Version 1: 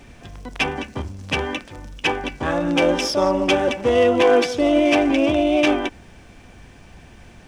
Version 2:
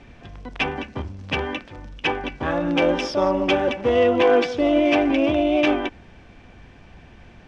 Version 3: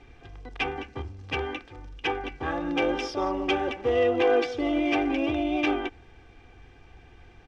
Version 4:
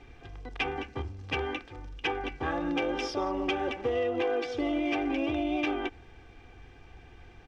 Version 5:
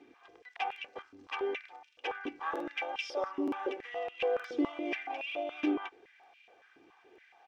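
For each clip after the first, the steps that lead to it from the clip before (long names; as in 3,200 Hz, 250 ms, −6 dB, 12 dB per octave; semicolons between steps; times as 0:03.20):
low-pass filter 4,000 Hz 12 dB per octave; level −1.5 dB
comb filter 2.5 ms, depth 61%; level −7 dB
downward compressor 6 to 1, threshold −26 dBFS, peak gain reduction 8 dB
regular buffer underruns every 0.92 s, samples 2,048, repeat, from 0:00.67; high-pass on a step sequencer 7.1 Hz 300–2,600 Hz; level −8.5 dB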